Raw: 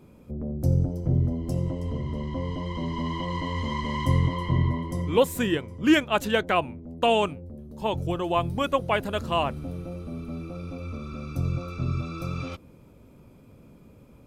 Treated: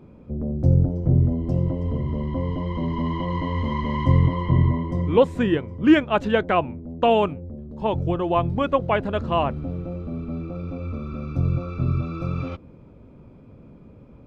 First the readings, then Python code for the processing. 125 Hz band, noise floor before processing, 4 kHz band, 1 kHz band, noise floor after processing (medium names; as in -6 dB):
+5.0 dB, -52 dBFS, -3.0 dB, +3.0 dB, -47 dBFS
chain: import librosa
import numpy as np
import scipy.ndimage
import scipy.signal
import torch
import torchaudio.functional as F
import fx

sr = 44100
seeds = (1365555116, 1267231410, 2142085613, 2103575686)

y = fx.spacing_loss(x, sr, db_at_10k=28)
y = F.gain(torch.from_numpy(y), 5.5).numpy()